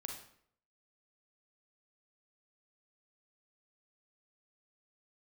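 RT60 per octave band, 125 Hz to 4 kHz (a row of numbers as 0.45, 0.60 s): 0.75, 0.65, 0.65, 0.60, 0.55, 0.50 s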